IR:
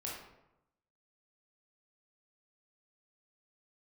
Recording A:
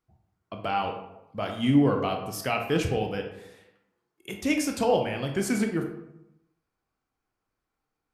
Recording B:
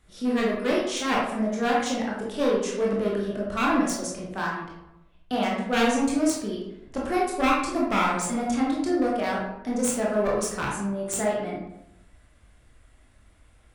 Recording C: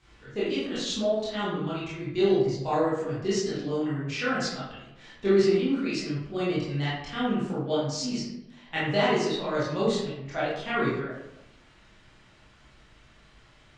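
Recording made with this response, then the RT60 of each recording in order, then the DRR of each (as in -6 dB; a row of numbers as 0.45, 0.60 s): B; 0.90, 0.90, 0.90 s; 3.0, -4.5, -10.0 dB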